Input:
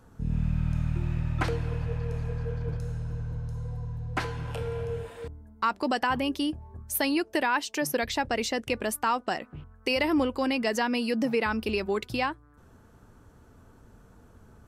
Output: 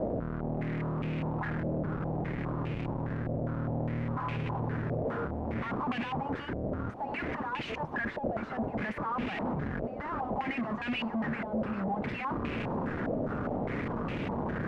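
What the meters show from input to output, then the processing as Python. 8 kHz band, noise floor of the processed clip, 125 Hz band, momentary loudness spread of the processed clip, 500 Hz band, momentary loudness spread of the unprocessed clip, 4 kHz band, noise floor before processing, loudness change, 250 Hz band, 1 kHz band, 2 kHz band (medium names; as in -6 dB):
under -25 dB, -39 dBFS, -2.5 dB, 2 LU, -4.0 dB, 9 LU, -11.0 dB, -56 dBFS, -4.5 dB, -2.0 dB, -4.0 dB, -5.5 dB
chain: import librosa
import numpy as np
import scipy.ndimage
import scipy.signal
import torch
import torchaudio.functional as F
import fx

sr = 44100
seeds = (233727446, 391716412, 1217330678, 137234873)

y = x + 0.5 * 10.0 ** (-26.0 / 20.0) * np.diff(np.sign(x), prepend=np.sign(x[:1]))
y = scipy.signal.sosfilt(scipy.signal.cheby1(4, 1.0, [190.0, 730.0], 'bandstop', fs=sr, output='sos'), y)
y = fx.low_shelf(y, sr, hz=90.0, db=-7.0)
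y = y + 0.49 * np.pad(y, (int(4.8 * sr / 1000.0), 0))[:len(y)]
y = fx.schmitt(y, sr, flips_db=-41.5)
y = fx.graphic_eq_10(y, sr, hz=(125, 250, 500), db=(8, 10, 6))
y = y + 10.0 ** (-14.0 / 20.0) * np.pad(y, (int(1163 * sr / 1000.0), 0))[:len(y)]
y = fx.filter_held_lowpass(y, sr, hz=4.9, low_hz=630.0, high_hz=2500.0)
y = F.gain(torch.from_numpy(y), -8.5).numpy()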